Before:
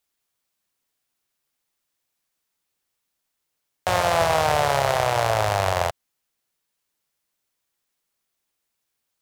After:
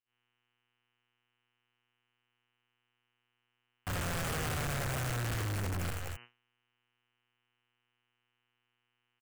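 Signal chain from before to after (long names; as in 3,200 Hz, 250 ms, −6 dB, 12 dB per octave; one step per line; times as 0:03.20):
notch filter 2,100 Hz, Q 9.4
log-companded quantiser 2 bits
low-shelf EQ 240 Hz +11 dB
phaser with its sweep stopped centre 930 Hz, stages 6
on a send: multi-tap delay 76/243/258 ms −14/−17.5/−18 dB
on the sum: hum with harmonics 120 Hz, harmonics 25, −51 dBFS 0 dB per octave
thirty-one-band graphic EQ 125 Hz +4 dB, 630 Hz −10 dB, 3,150 Hz +8 dB, 5,000 Hz −4 dB, 8,000 Hz +3 dB
hard clipping −28.5 dBFS, distortion −1 dB
noise gate −44 dBFS, range −45 dB
level −5 dB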